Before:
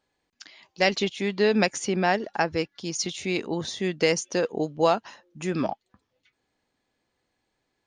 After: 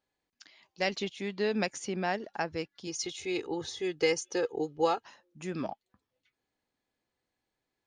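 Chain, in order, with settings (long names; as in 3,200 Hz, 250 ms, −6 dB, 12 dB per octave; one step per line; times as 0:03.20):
0:02.87–0:05.04: comb filter 2.4 ms, depth 88%
level −8.5 dB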